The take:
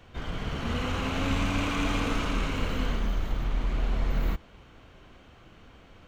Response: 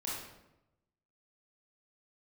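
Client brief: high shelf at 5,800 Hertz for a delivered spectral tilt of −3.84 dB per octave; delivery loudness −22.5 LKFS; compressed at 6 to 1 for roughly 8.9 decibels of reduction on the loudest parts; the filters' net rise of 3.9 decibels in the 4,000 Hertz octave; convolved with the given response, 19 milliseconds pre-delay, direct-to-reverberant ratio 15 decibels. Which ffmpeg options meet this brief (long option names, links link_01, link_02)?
-filter_complex "[0:a]equalizer=frequency=4000:width_type=o:gain=4.5,highshelf=frequency=5800:gain=3,acompressor=threshold=-32dB:ratio=6,asplit=2[link_01][link_02];[1:a]atrim=start_sample=2205,adelay=19[link_03];[link_02][link_03]afir=irnorm=-1:irlink=0,volume=-17dB[link_04];[link_01][link_04]amix=inputs=2:normalize=0,volume=15dB"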